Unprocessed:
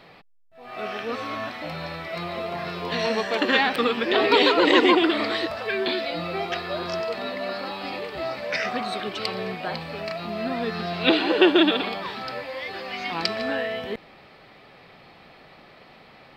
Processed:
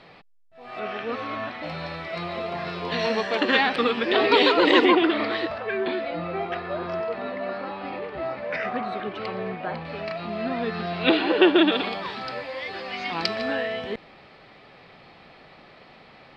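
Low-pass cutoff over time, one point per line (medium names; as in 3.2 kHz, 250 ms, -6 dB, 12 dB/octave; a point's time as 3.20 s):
6.7 kHz
from 0.79 s 3.4 kHz
from 1.63 s 5.6 kHz
from 4.85 s 3.2 kHz
from 5.58 s 2 kHz
from 9.85 s 3.6 kHz
from 11.72 s 6.7 kHz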